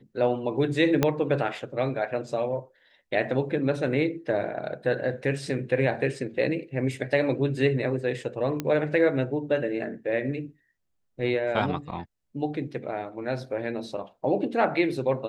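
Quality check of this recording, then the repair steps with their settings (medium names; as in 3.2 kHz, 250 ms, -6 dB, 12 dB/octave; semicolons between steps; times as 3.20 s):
1.03 s: pop -7 dBFS
8.60 s: pop -14 dBFS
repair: de-click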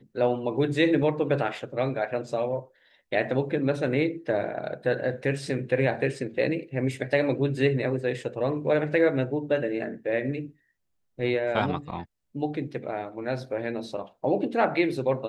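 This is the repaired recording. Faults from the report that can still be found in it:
1.03 s: pop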